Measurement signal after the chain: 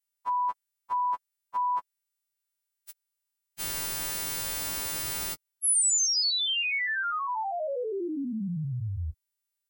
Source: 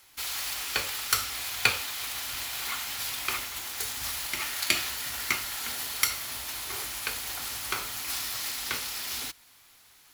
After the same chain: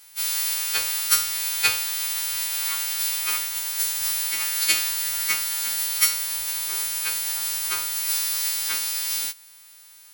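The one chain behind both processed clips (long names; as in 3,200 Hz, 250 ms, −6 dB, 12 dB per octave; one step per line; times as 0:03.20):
every partial snapped to a pitch grid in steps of 2 semitones
level −2 dB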